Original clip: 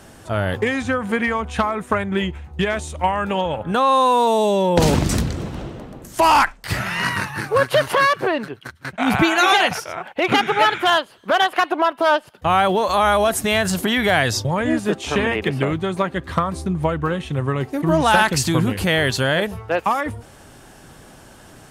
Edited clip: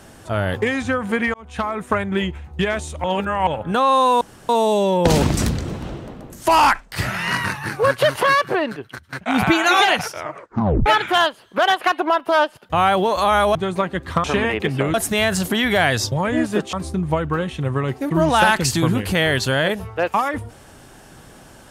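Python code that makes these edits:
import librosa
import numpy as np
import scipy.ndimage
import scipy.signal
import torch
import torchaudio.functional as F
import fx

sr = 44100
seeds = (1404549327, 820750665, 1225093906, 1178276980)

y = fx.edit(x, sr, fx.fade_in_span(start_s=1.34, length_s=0.63, curve='qsin'),
    fx.reverse_span(start_s=3.04, length_s=0.43),
    fx.insert_room_tone(at_s=4.21, length_s=0.28),
    fx.tape_stop(start_s=9.92, length_s=0.66),
    fx.swap(start_s=13.27, length_s=1.79, other_s=15.76, other_length_s=0.69), tone=tone)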